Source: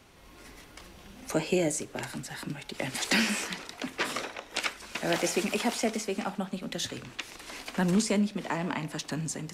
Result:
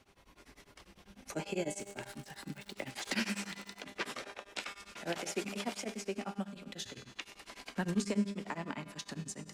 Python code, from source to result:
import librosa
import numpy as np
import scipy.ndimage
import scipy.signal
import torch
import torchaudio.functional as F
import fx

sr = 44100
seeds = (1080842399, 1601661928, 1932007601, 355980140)

y = fx.high_shelf(x, sr, hz=11000.0, db=-6.0)
y = fx.comb_fb(y, sr, f0_hz=200.0, decay_s=1.4, harmonics='all', damping=0.0, mix_pct=80)
y = fx.dmg_crackle(y, sr, seeds[0], per_s=150.0, level_db=-45.0, at=(1.78, 3.8), fade=0.02)
y = y * np.abs(np.cos(np.pi * 10.0 * np.arange(len(y)) / sr))
y = F.gain(torch.from_numpy(y), 7.0).numpy()